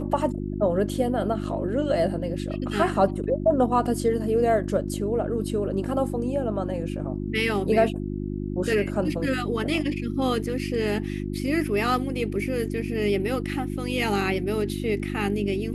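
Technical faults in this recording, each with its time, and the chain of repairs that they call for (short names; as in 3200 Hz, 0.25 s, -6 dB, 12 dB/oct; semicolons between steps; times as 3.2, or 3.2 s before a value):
hum 50 Hz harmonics 7 -30 dBFS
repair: de-hum 50 Hz, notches 7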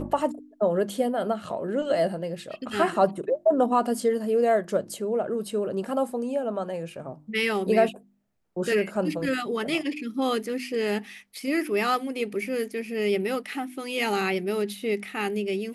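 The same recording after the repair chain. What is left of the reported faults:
none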